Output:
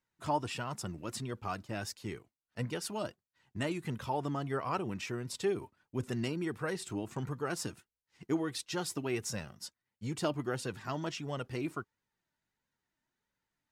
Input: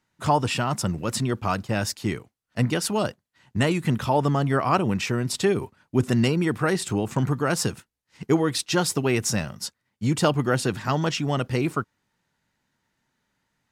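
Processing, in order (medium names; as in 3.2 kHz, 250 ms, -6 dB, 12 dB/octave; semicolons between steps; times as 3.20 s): flange 1.5 Hz, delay 1.8 ms, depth 1.6 ms, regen +51%; trim -8.5 dB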